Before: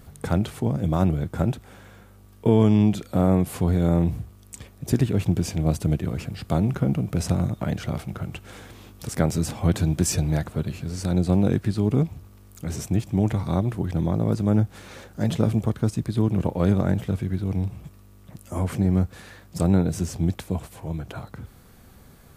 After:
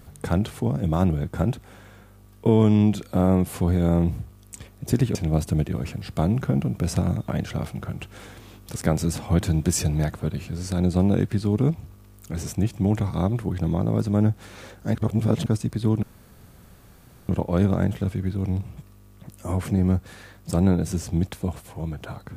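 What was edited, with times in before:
5.15–5.48 s: delete
15.28–15.79 s: reverse
16.36 s: insert room tone 1.26 s

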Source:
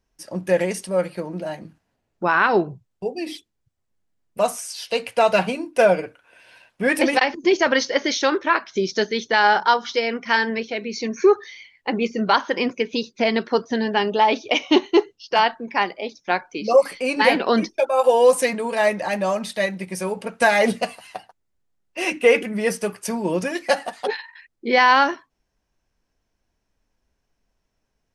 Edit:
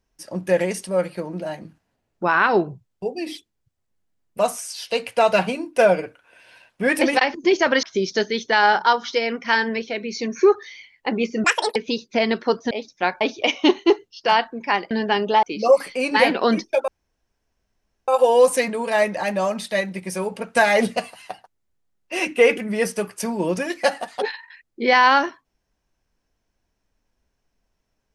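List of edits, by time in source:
7.83–8.64 s: delete
12.25–12.81 s: speed 176%
13.76–14.28 s: swap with 15.98–16.48 s
17.93 s: insert room tone 1.20 s

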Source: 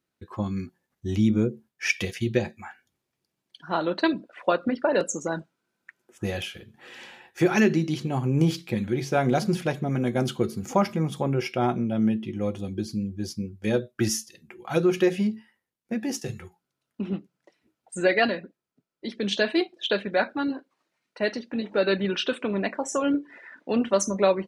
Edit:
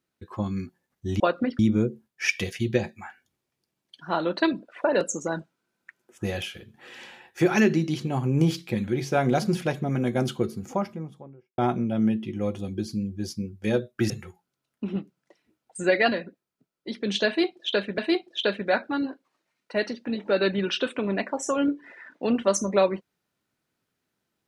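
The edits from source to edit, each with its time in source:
4.45–4.84 s: move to 1.20 s
10.13–11.58 s: studio fade out
14.10–16.27 s: delete
19.44–20.15 s: loop, 2 plays

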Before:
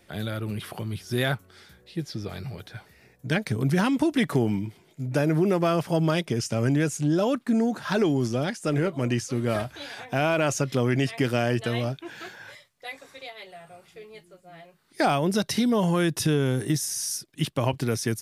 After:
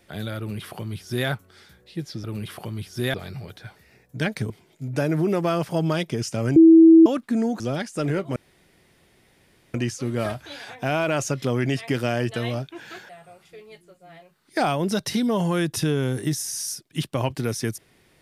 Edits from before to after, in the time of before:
0.38–1.28 s: copy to 2.24 s
3.60–4.68 s: delete
6.74–7.24 s: bleep 326 Hz -7 dBFS
7.78–8.28 s: delete
9.04 s: insert room tone 1.38 s
12.39–13.52 s: delete

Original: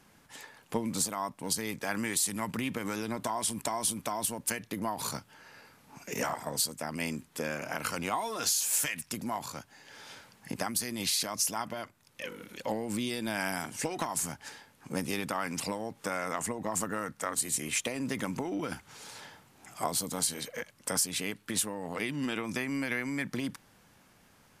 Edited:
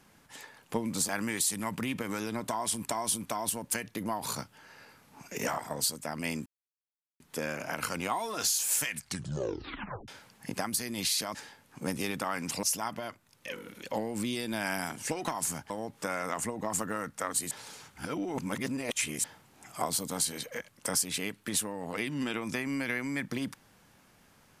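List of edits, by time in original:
1.09–1.85 s: delete
7.22 s: insert silence 0.74 s
8.91 s: tape stop 1.19 s
14.44–15.72 s: move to 11.37 s
17.53–19.26 s: reverse

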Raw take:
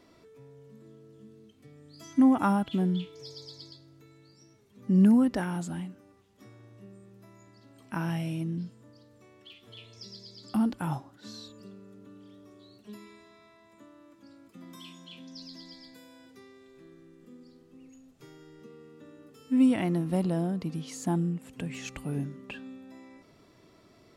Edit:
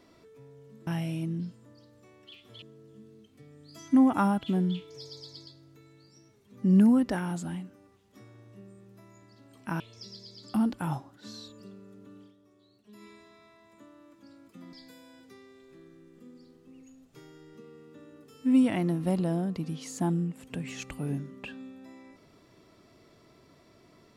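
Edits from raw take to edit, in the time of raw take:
8.05–9.80 s: move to 0.87 s
12.21–13.05 s: dip -9.5 dB, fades 0.13 s
14.73–15.79 s: delete

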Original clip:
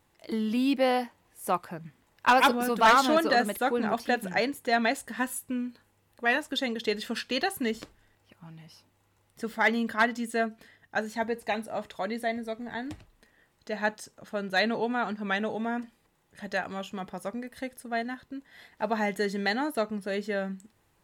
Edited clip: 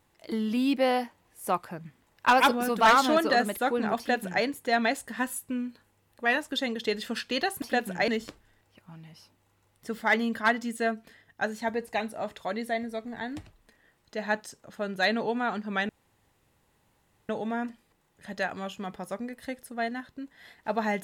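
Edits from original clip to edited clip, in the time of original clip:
3.98–4.44 s: copy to 7.62 s
15.43 s: insert room tone 1.40 s

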